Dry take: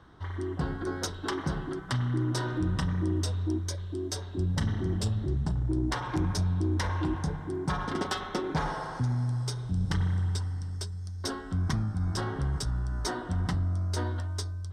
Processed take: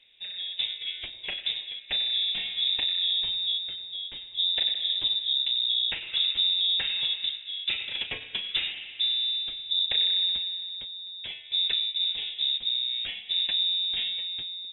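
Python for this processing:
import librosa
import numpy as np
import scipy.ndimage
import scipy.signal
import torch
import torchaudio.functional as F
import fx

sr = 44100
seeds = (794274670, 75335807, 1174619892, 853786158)

y = fx.dynamic_eq(x, sr, hz=1700.0, q=0.84, threshold_db=-50.0, ratio=4.0, max_db=-6, at=(12.15, 12.9))
y = fx.freq_invert(y, sr, carrier_hz=3700)
y = fx.upward_expand(y, sr, threshold_db=-39.0, expansion=1.5)
y = F.gain(torch.from_numpy(y), 2.0).numpy()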